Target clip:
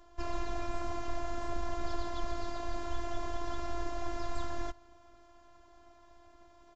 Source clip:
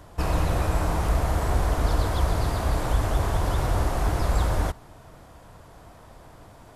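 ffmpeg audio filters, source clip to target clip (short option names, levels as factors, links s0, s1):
-af "afftfilt=real='hypot(re,im)*cos(PI*b)':imag='0':win_size=512:overlap=0.75,aresample=16000,aresample=44100,volume=0.447"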